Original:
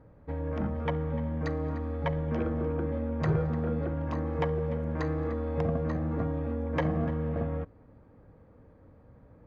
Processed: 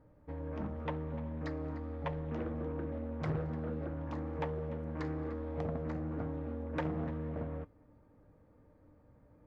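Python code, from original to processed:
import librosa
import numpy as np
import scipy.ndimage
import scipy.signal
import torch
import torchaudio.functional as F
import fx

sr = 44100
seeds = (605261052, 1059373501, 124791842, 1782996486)

y = fx.comb_fb(x, sr, f0_hz=300.0, decay_s=0.18, harmonics='all', damping=0.0, mix_pct=70)
y = fx.doppler_dist(y, sr, depth_ms=0.46)
y = F.gain(torch.from_numpy(y), 1.0).numpy()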